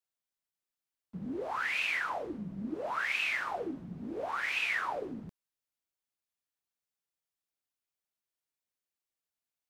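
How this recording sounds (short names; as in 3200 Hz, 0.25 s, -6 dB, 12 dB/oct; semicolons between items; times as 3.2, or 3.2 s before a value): noise floor -92 dBFS; spectral tilt -4.0 dB/oct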